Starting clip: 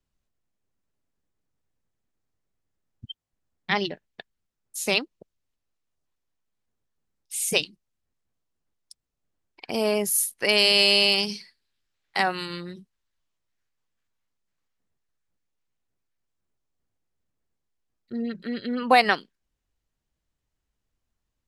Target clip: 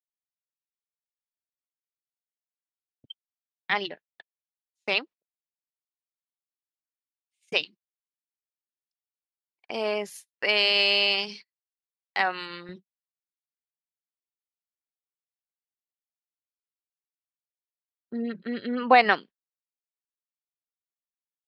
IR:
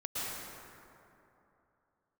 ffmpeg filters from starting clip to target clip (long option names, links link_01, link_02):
-af "lowpass=3200,agate=range=-37dB:threshold=-40dB:ratio=16:detection=peak,asetnsamples=nb_out_samples=441:pad=0,asendcmd='12.69 highpass f 200',highpass=frequency=750:poles=1,volume=1dB"